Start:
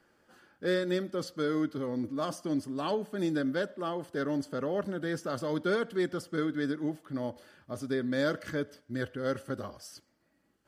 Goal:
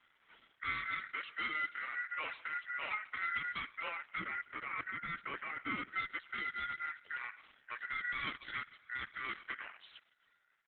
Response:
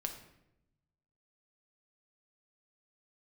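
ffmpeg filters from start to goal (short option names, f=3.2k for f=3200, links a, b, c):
-filter_complex "[0:a]asplit=2[a][b];[b]adynamicsmooth=sensitivity=0.5:basefreq=580,volume=-1.5dB[c];[a][c]amix=inputs=2:normalize=0,aexciter=amount=1.1:drive=4.5:freq=3.6k,aeval=exprs='val(0)*sin(2*PI*1700*n/s)':c=same,acrossover=split=340|3000[d][e][f];[e]acompressor=threshold=-38dB:ratio=6[g];[d][g][f]amix=inputs=3:normalize=0,acrossover=split=430[h][i];[h]lowshelf=f=270:g=-11.5[j];[i]asoftclip=type=hard:threshold=-31dB[k];[j][k]amix=inputs=2:normalize=0,asettb=1/sr,asplit=3[l][m][n];[l]atrim=end=4.194[o];[m]atrim=start=4.19:end=5.92,asetpts=PTS-STARTPTS,afade=t=in:d=0.004:c=qsin,afade=t=out:st=1.726:d=0.004:c=qsin,equalizer=f=125:t=o:w=1:g=6,equalizer=f=250:t=o:w=1:g=6,equalizer=f=4k:t=o:w=1:g=-8,equalizer=f=8k:t=o:w=1:g=-6[p];[n]atrim=start=5.916[q];[o][p]acrossfade=d=0.004:c1=hsin:c2=qsin[r];[r][q]acrossfade=d=0.004:c1=qsin:c2=hsin,asplit=4[s][t][u][v];[t]adelay=138,afreqshift=32,volume=-21dB[w];[u]adelay=276,afreqshift=64,volume=-27.4dB[x];[v]adelay=414,afreqshift=96,volume=-33.8dB[y];[s][w][x][y]amix=inputs=4:normalize=0,volume=1dB" -ar 48000 -c:a libopus -b:a 8k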